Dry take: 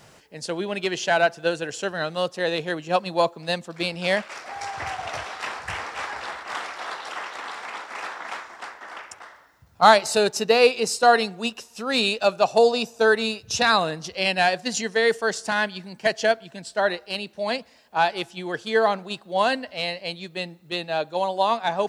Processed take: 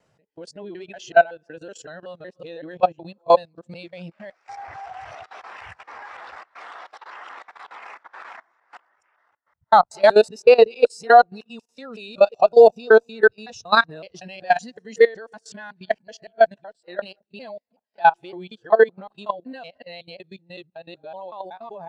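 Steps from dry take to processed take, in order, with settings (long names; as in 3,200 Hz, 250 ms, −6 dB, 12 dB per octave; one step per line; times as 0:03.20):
reversed piece by piece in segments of 187 ms
harmonic generator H 4 −32 dB, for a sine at −1.5 dBFS
output level in coarse steps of 18 dB
every bin expanded away from the loudest bin 1.5 to 1
level +5 dB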